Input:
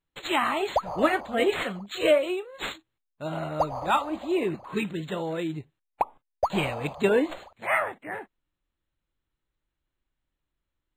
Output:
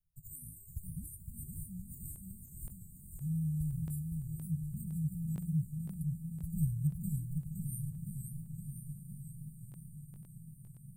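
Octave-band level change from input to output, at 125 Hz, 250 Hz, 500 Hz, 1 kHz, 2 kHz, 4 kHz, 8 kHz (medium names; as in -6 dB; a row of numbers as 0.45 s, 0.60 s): +5.0 dB, -8.5 dB, under -40 dB, under -40 dB, under -40 dB, under -40 dB, -1.5 dB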